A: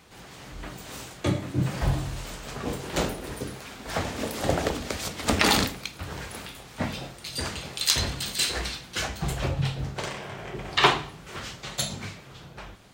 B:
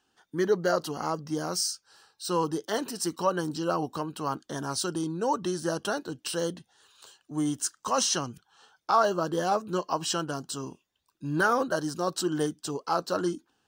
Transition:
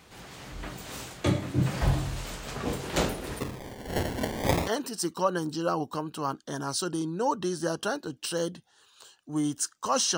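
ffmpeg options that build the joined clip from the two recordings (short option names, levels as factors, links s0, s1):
-filter_complex "[0:a]asplit=3[s0][s1][s2];[s0]afade=t=out:st=3.39:d=0.02[s3];[s1]acrusher=samples=24:mix=1:aa=0.000001:lfo=1:lforange=24:lforate=0.31,afade=t=in:st=3.39:d=0.02,afade=t=out:st=4.69:d=0.02[s4];[s2]afade=t=in:st=4.69:d=0.02[s5];[s3][s4][s5]amix=inputs=3:normalize=0,apad=whole_dur=10.17,atrim=end=10.17,atrim=end=4.69,asetpts=PTS-STARTPTS[s6];[1:a]atrim=start=2.65:end=8.19,asetpts=PTS-STARTPTS[s7];[s6][s7]acrossfade=d=0.06:c1=tri:c2=tri"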